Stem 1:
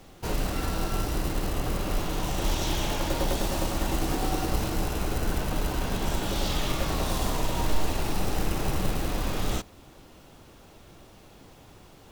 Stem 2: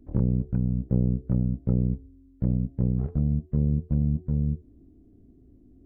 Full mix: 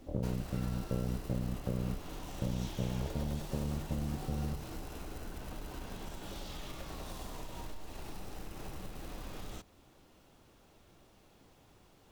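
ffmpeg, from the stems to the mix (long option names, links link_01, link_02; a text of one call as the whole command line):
ffmpeg -i stem1.wav -i stem2.wav -filter_complex "[0:a]acompressor=threshold=-28dB:ratio=6,volume=-11dB[link_01];[1:a]equalizer=frequency=600:width=1.9:gain=13.5,acompressor=threshold=-29dB:ratio=4,volume=-3.5dB[link_02];[link_01][link_02]amix=inputs=2:normalize=0,bandreject=frequency=50:width_type=h:width=6,bandreject=frequency=100:width_type=h:width=6,bandreject=frequency=150:width_type=h:width=6" out.wav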